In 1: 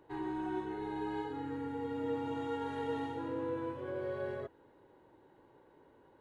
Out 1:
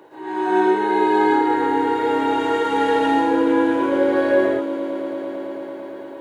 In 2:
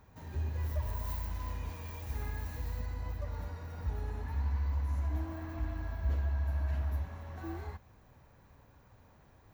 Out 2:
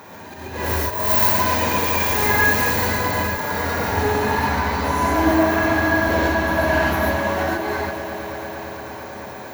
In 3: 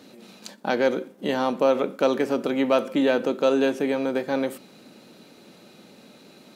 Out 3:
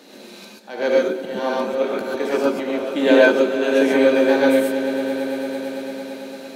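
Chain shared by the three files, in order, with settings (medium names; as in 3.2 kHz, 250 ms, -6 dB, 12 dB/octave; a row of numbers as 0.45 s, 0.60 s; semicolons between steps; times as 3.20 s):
high-pass 290 Hz 12 dB/octave; band-stop 1.3 kHz, Q 15; slow attack 374 ms; on a send: echo with a slow build-up 112 ms, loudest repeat 5, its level -17 dB; on the sum: gated-style reverb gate 160 ms rising, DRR -4 dB; normalise loudness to -19 LUFS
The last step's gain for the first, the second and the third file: +16.5 dB, +23.5 dB, +4.0 dB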